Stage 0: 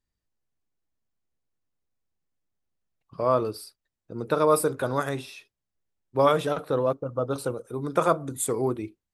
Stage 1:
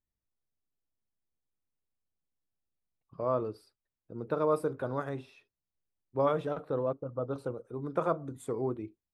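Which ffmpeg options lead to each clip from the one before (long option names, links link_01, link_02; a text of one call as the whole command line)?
ffmpeg -i in.wav -af "lowpass=frequency=1100:poles=1,volume=-6dB" out.wav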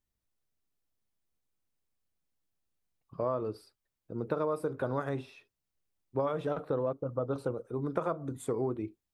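ffmpeg -i in.wav -af "acompressor=threshold=-31dB:ratio=10,volume=4dB" out.wav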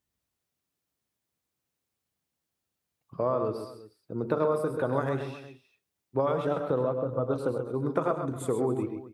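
ffmpeg -i in.wav -af "highpass=76,aecho=1:1:100|131|272|361:0.266|0.398|0.106|0.126,volume=4dB" out.wav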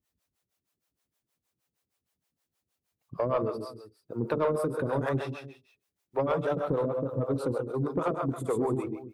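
ffmpeg -i in.wav -filter_complex "[0:a]acrossover=split=420[link_01][link_02];[link_01]aeval=exprs='val(0)*(1-1/2+1/2*cos(2*PI*6.4*n/s))':channel_layout=same[link_03];[link_02]aeval=exprs='val(0)*(1-1/2-1/2*cos(2*PI*6.4*n/s))':channel_layout=same[link_04];[link_03][link_04]amix=inputs=2:normalize=0,asoftclip=type=tanh:threshold=-24dB,volume=6dB" out.wav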